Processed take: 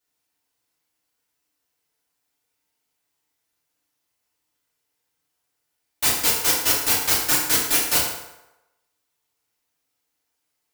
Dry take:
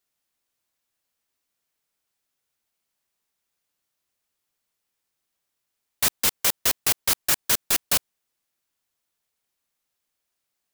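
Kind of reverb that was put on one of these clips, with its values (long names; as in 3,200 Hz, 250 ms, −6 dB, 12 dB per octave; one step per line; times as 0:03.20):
feedback delay network reverb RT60 0.96 s, low-frequency decay 0.75×, high-frequency decay 0.7×, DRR −8 dB
level −4.5 dB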